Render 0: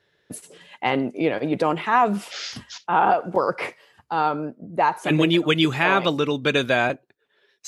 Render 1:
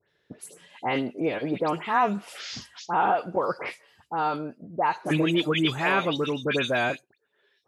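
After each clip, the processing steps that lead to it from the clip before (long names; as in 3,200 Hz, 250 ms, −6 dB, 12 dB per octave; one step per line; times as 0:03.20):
all-pass dispersion highs, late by 97 ms, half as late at 2,700 Hz
level −4.5 dB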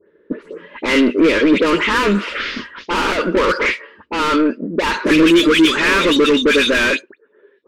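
mid-hump overdrive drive 29 dB, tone 1,600 Hz, clips at −11 dBFS
low-pass that shuts in the quiet parts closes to 560 Hz, open at −16 dBFS
phaser with its sweep stopped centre 310 Hz, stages 4
level +9 dB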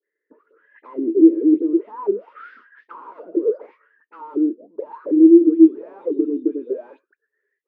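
de-essing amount 70%
hollow resonant body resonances 300/430 Hz, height 12 dB, ringing for 20 ms
envelope filter 330–2,000 Hz, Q 17, down, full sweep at −0.5 dBFS
level −6 dB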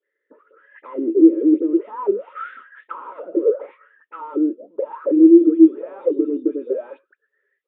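spectral tilt +2 dB per octave
hollow resonant body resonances 550/1,300 Hz, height 10 dB
downsampling to 8,000 Hz
level +3 dB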